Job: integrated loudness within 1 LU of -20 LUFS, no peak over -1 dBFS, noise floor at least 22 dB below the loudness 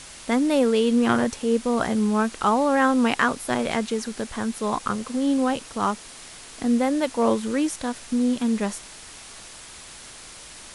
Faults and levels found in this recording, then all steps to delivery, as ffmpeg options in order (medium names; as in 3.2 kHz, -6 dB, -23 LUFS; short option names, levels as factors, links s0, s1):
noise floor -43 dBFS; noise floor target -45 dBFS; loudness -23.0 LUFS; peak level -6.0 dBFS; loudness target -20.0 LUFS
-> -af "afftdn=nr=6:nf=-43"
-af "volume=1.41"